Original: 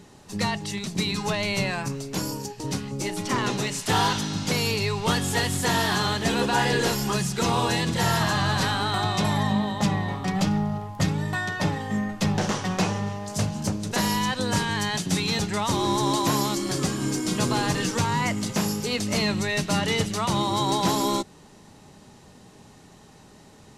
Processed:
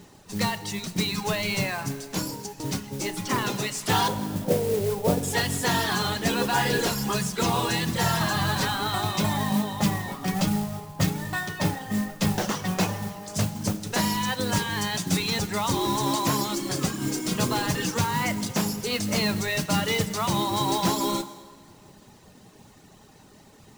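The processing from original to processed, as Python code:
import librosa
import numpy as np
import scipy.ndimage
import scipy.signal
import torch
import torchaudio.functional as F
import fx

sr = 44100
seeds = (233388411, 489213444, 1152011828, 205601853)

y = fx.dereverb_blind(x, sr, rt60_s=0.82)
y = fx.lowpass_res(y, sr, hz=560.0, q=3.6, at=(4.08, 5.23))
y = fx.mod_noise(y, sr, seeds[0], snr_db=14)
y = fx.rev_plate(y, sr, seeds[1], rt60_s=1.9, hf_ratio=0.8, predelay_ms=0, drr_db=12.0)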